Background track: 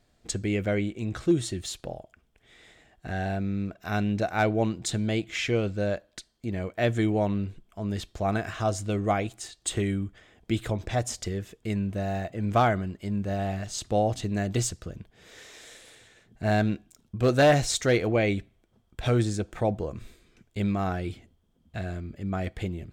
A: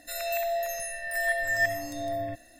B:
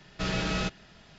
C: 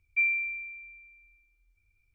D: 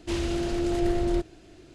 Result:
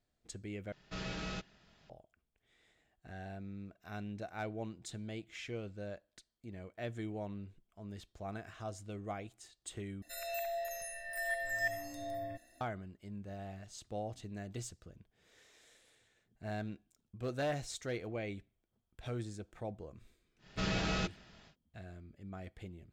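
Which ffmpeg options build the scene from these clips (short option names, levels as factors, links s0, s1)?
-filter_complex "[2:a]asplit=2[s0][s1];[0:a]volume=0.15,asplit=3[s2][s3][s4];[s2]atrim=end=0.724[s5];[s0]atrim=end=1.18,asetpts=PTS-STARTPTS,volume=0.266[s6];[s3]atrim=start=1.896:end=10.024[s7];[1:a]atrim=end=2.59,asetpts=PTS-STARTPTS,volume=0.335[s8];[s4]atrim=start=12.606[s9];[s1]atrim=end=1.18,asetpts=PTS-STARTPTS,volume=0.562,afade=t=in:d=0.1,afade=t=out:st=1.08:d=0.1,adelay=20380[s10];[s5][s6]acrossfade=d=0.004:c1=hsin:c2=hsin[s11];[s11][s7]acrossfade=d=0.004:c1=hsin:c2=hsin[s12];[s12][s8]acrossfade=d=0.004:c1=hsin:c2=hsin[s13];[s13][s9]acrossfade=d=0.004:c1=hsin:c2=hsin[s14];[s14][s10]amix=inputs=2:normalize=0"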